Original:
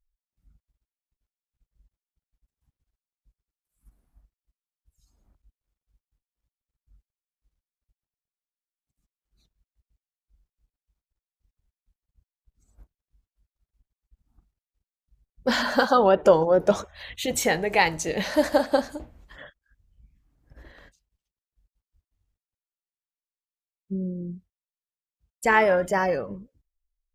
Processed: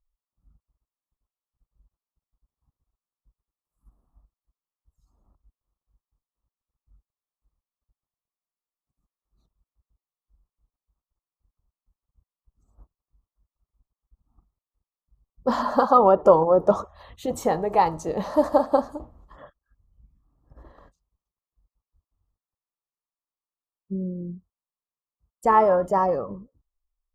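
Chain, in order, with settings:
high shelf with overshoot 1,600 Hz −10.5 dB, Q 3
notch filter 1,500 Hz, Q 5.7

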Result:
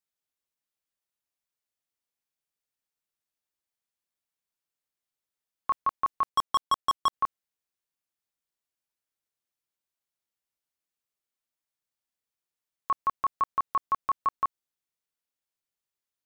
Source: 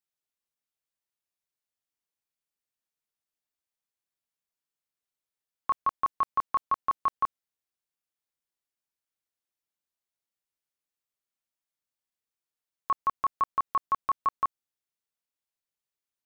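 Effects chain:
0:06.29–0:07.13: leveller curve on the samples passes 3

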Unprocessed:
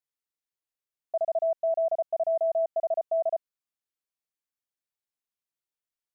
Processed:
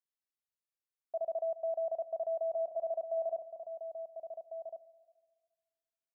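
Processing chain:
slap from a distant wall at 240 metres, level −7 dB
four-comb reverb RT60 1.5 s, combs from 30 ms, DRR 14 dB
level −8 dB

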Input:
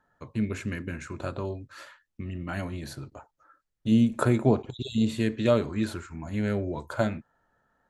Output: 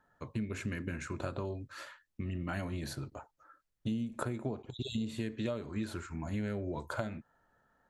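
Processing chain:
downward compressor 12 to 1, threshold −31 dBFS, peak gain reduction 16.5 dB
level −1 dB

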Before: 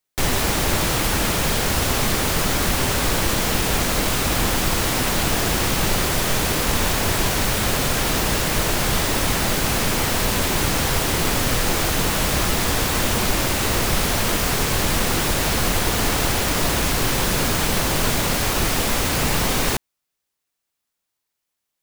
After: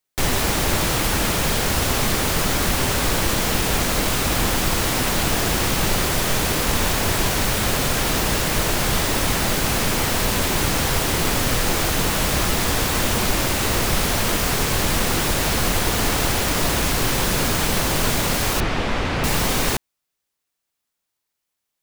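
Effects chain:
0:18.60–0:19.24: low-pass filter 3,100 Hz 12 dB per octave

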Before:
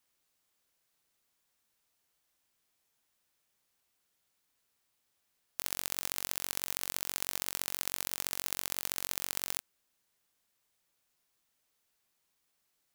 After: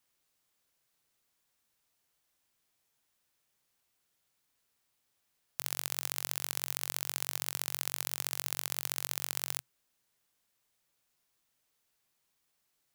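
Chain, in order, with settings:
parametric band 130 Hz +5.5 dB 0.23 octaves

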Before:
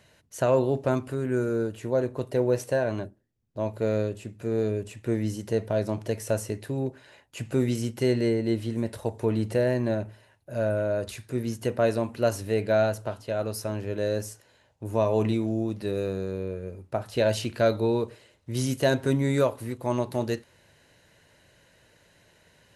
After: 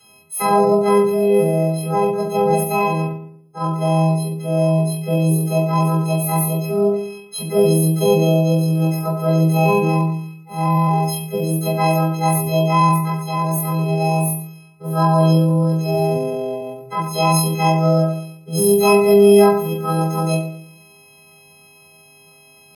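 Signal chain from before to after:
every partial snapped to a pitch grid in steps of 4 semitones
parametric band 110 Hz +4.5 dB 0.21 octaves
feedback delay network reverb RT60 0.57 s, low-frequency decay 1.35×, high-frequency decay 0.65×, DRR −9 dB
pitch shifter +6.5 semitones
level −6 dB

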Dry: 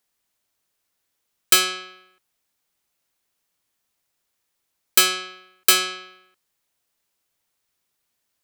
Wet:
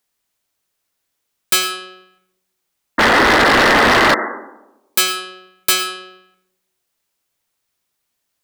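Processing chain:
sound drawn into the spectrogram noise, 0:02.98–0:04.15, 210–2,100 Hz −11 dBFS
comb and all-pass reverb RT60 0.96 s, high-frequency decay 0.35×, pre-delay 65 ms, DRR 12.5 dB
wave folding −8.5 dBFS
level +2 dB

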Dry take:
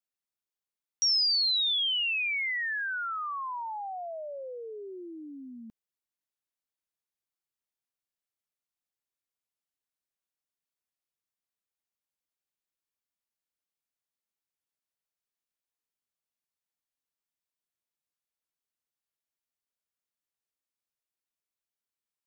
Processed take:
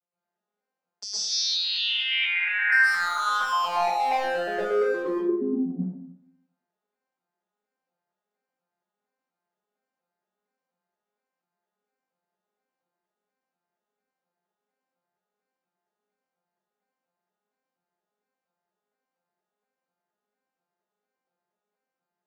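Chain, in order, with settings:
vocoder with an arpeggio as carrier minor triad, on F3, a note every 235 ms
parametric band 720 Hz +14.5 dB 3 octaves
0:02.72–0:05.08: gain into a clipping stage and back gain 26 dB
convolution reverb RT60 0.75 s, pre-delay 103 ms, DRR −10 dB
level −7.5 dB

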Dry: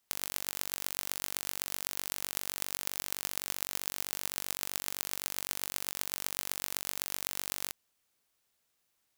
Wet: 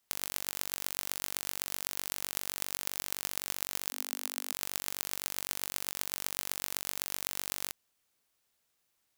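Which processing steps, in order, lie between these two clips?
0:03.91–0:04.52: elliptic high-pass filter 250 Hz, stop band 40 dB

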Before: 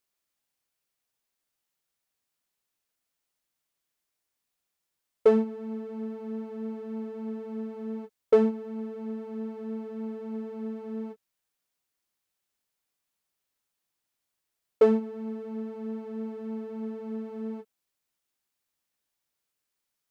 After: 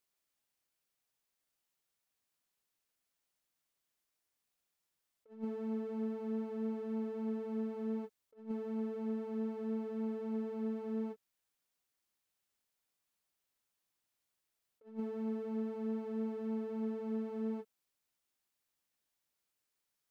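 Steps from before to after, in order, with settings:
compressor whose output falls as the input rises −31 dBFS, ratio −0.5
level −5.5 dB

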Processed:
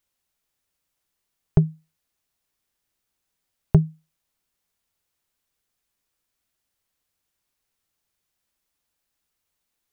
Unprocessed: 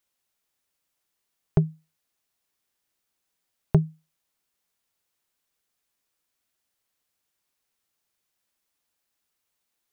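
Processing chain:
low-shelf EQ 120 Hz +9.5 dB

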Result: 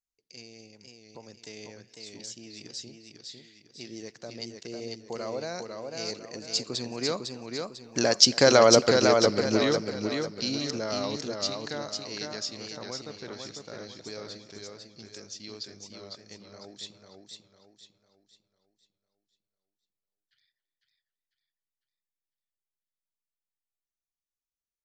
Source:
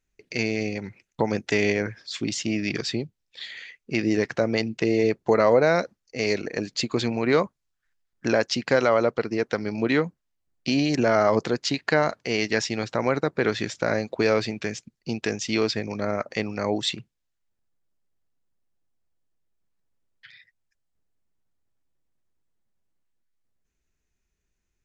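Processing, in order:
source passing by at 0:08.71, 12 m/s, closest 4.6 metres
high shelf with overshoot 3,300 Hz +10.5 dB, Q 1.5
far-end echo of a speakerphone 270 ms, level −21 dB
on a send at −24 dB: convolution reverb RT60 0.60 s, pre-delay 42 ms
on the sum: feedback echo with a swinging delay time 500 ms, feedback 39%, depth 82 cents, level −4.5 dB
level +3 dB

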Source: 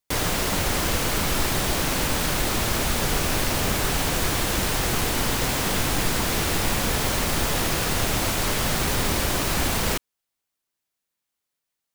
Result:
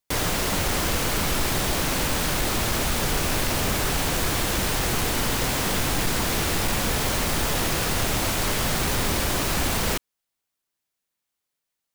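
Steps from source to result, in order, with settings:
gain into a clipping stage and back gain 17.5 dB

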